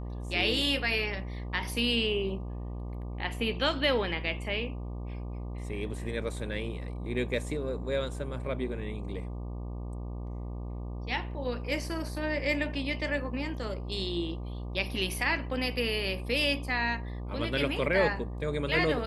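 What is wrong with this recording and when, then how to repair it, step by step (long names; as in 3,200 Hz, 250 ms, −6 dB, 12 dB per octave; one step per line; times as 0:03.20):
mains buzz 60 Hz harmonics 20 −37 dBFS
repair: hum removal 60 Hz, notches 20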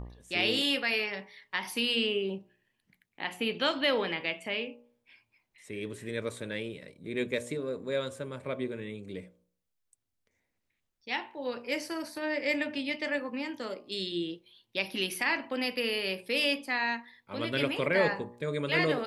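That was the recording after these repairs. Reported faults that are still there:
none of them is left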